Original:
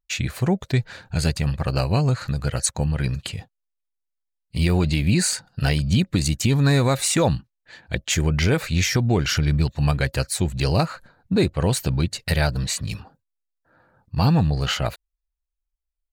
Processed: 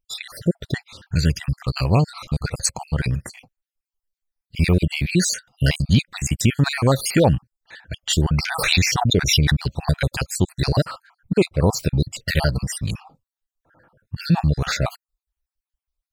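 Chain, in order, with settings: random holes in the spectrogram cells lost 52%; 0.84–1.85 s: peaking EQ 730 Hz -14 dB 0.96 oct; 8.41–9.56 s: swell ahead of each attack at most 51 dB/s; trim +4 dB

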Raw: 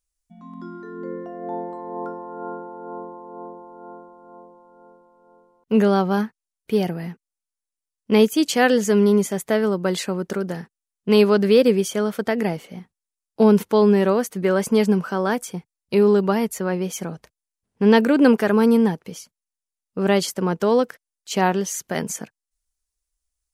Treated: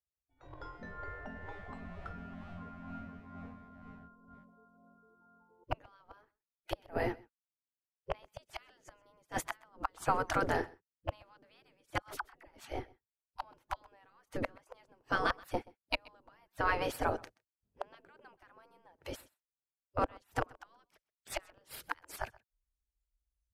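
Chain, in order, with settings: spectral noise reduction 18 dB; in parallel at -12 dB: hysteresis with a dead band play -34 dBFS; on the sum: tilt EQ -3.5 dB/octave; inverted gate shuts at -6 dBFS, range -38 dB; spectral gate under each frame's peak -20 dB weak; 12.02–12.51 s: phase dispersion lows, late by 51 ms, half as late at 570 Hz; on a send: delay 128 ms -23.5 dB; on the sum: trim +5 dB

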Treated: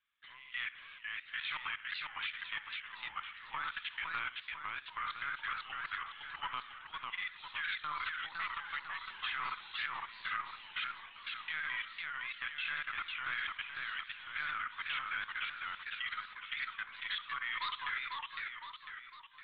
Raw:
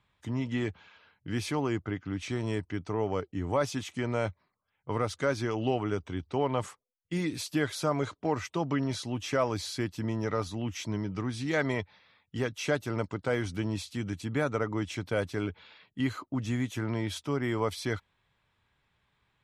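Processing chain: inverse Chebyshev high-pass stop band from 480 Hz, stop band 50 dB; LPC vocoder at 8 kHz pitch kept; flange 1.7 Hz, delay 1.9 ms, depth 5 ms, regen -81%; flutter echo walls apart 11.4 m, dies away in 0.47 s; on a send at -13 dB: reverberation RT60 0.50 s, pre-delay 3 ms; on the sum: level held to a coarse grid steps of 16 dB; modulated delay 505 ms, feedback 49%, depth 200 cents, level -3 dB; trim +9.5 dB

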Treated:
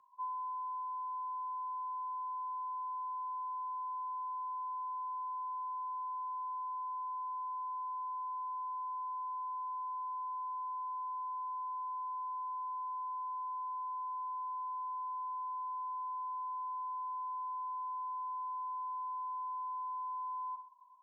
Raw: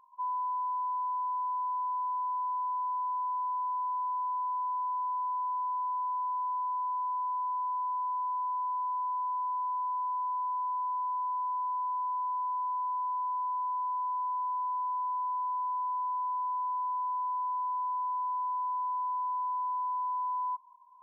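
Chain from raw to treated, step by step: frequency shift +15 Hz; on a send: feedback delay 312 ms, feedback 52%, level -22.5 dB; on the sum: gated-style reverb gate 170 ms falling, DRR 9.5 dB; trim -5.5 dB

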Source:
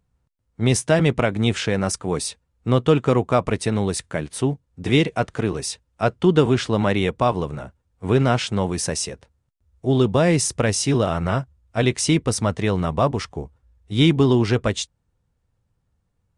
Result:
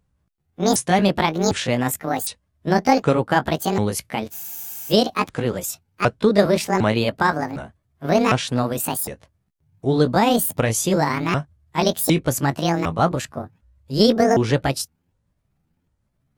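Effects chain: sawtooth pitch modulation +11 st, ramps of 756 ms; spectral freeze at 4.34 s, 0.56 s; trim +1.5 dB

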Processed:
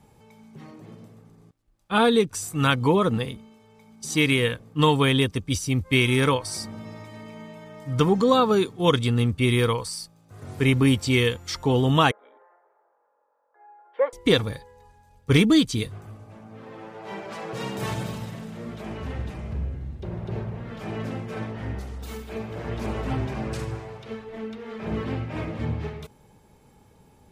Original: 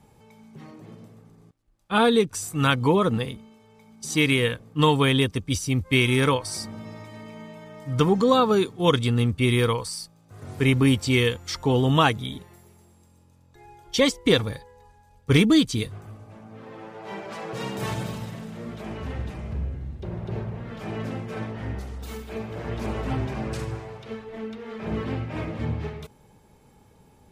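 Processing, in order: 12.11–14.13 s: elliptic band-pass 500–1600 Hz, stop band 60 dB

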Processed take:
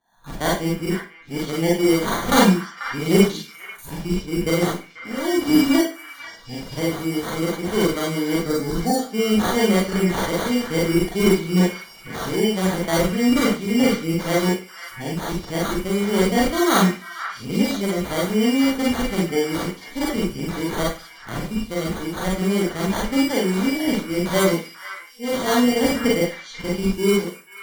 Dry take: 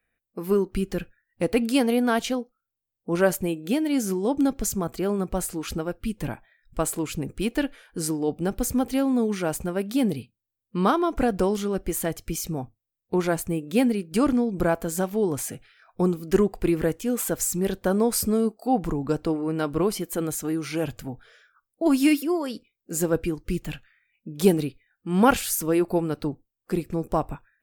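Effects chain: reverse the whole clip; sample-and-hold 17×; spectral selection erased 8.39–8.99 s, 1.8–3.6 kHz; repeats whose band climbs or falls 489 ms, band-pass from 1.7 kHz, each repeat 1.4 oct, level -6 dB; Schroeder reverb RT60 0.33 s, combs from 33 ms, DRR -4.5 dB; trim -2 dB

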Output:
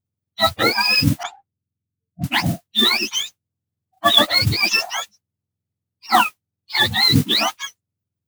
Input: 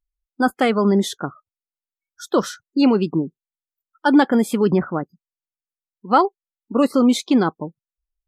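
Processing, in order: spectrum inverted on a logarithmic axis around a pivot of 1 kHz; modulation noise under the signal 16 dB; 1.23–2.32 s: level-controlled noise filter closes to 320 Hz, open at -25.5 dBFS; trim +4.5 dB

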